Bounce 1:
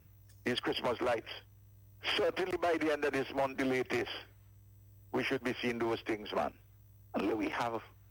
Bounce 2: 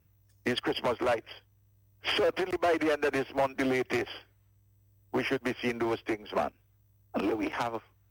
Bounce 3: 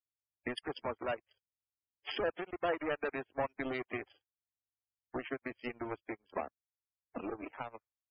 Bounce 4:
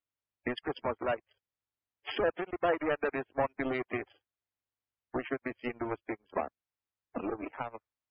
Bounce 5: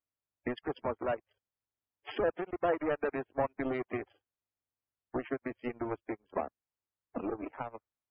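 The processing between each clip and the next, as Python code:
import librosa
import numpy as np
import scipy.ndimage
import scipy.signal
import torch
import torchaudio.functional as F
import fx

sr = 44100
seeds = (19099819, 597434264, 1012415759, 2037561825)

y1 = fx.upward_expand(x, sr, threshold_db=-52.0, expansion=1.5)
y1 = y1 * librosa.db_to_amplitude(5.5)
y2 = fx.power_curve(y1, sr, exponent=2.0)
y2 = fx.spec_topn(y2, sr, count=64)
y2 = y2 * librosa.db_to_amplitude(-3.0)
y3 = scipy.signal.sosfilt(scipy.signal.bessel(2, 2600.0, 'lowpass', norm='mag', fs=sr, output='sos'), y2)
y3 = y3 * librosa.db_to_amplitude(5.0)
y4 = fx.high_shelf(y3, sr, hz=2000.0, db=-10.0)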